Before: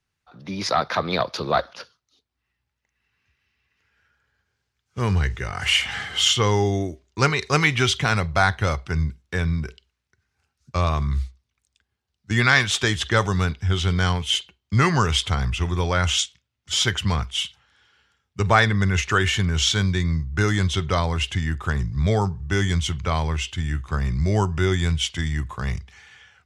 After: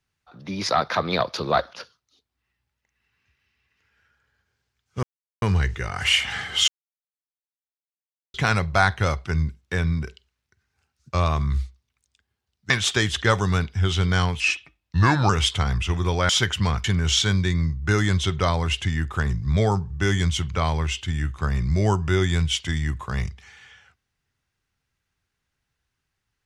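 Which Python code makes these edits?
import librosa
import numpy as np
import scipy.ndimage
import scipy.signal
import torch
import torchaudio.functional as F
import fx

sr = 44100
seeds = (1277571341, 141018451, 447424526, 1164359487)

y = fx.edit(x, sr, fx.insert_silence(at_s=5.03, length_s=0.39),
    fx.silence(start_s=6.29, length_s=1.66),
    fx.cut(start_s=12.31, length_s=0.26),
    fx.speed_span(start_s=14.27, length_s=0.74, speed=0.83),
    fx.cut(start_s=16.01, length_s=0.73),
    fx.cut(start_s=17.29, length_s=2.05), tone=tone)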